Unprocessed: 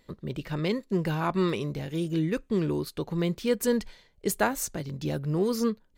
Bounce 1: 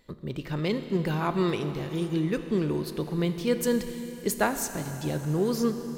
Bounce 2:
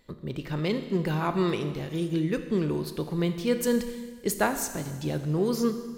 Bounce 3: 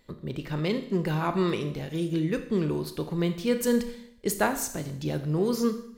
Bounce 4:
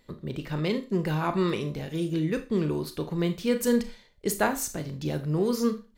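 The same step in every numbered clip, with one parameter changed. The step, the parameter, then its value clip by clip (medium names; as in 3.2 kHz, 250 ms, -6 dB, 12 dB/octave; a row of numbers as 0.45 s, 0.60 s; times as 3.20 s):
Schroeder reverb, RT60: 4.3 s, 1.6 s, 0.71 s, 0.31 s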